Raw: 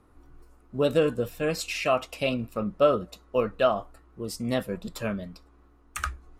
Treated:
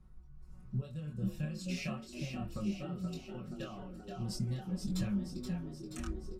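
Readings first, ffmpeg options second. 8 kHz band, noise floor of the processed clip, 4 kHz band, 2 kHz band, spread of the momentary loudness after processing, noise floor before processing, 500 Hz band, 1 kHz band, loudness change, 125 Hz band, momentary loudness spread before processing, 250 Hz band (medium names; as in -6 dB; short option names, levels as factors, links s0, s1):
-9.5 dB, -53 dBFS, -12.0 dB, -15.5 dB, 9 LU, -58 dBFS, -22.5 dB, -19.5 dB, -12.0 dB, -1.0 dB, 13 LU, -5.5 dB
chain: -filter_complex "[0:a]acompressor=threshold=0.0178:ratio=10,flanger=delay=20:depth=6.7:speed=0.39,tremolo=f=1.6:d=0.55,firequalizer=gain_entry='entry(130,0);entry(330,-21);entry(5300,-4)':delay=0.05:min_phase=1,asplit=9[s0][s1][s2][s3][s4][s5][s6][s7][s8];[s1]adelay=477,afreqshift=64,volume=0.501[s9];[s2]adelay=954,afreqshift=128,volume=0.295[s10];[s3]adelay=1431,afreqshift=192,volume=0.174[s11];[s4]adelay=1908,afreqshift=256,volume=0.104[s12];[s5]adelay=2385,afreqshift=320,volume=0.061[s13];[s6]adelay=2862,afreqshift=384,volume=0.0359[s14];[s7]adelay=3339,afreqshift=448,volume=0.0211[s15];[s8]adelay=3816,afreqshift=512,volume=0.0124[s16];[s0][s9][s10][s11][s12][s13][s14][s15][s16]amix=inputs=9:normalize=0,dynaudnorm=f=310:g=3:m=1.88,aemphasis=mode=reproduction:type=75kf,aecho=1:1:5.4:0.81,volume=2.51"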